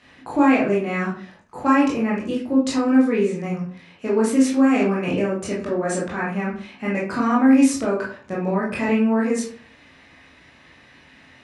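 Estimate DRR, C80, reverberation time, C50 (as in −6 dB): −6.0 dB, 10.5 dB, 0.45 s, 5.5 dB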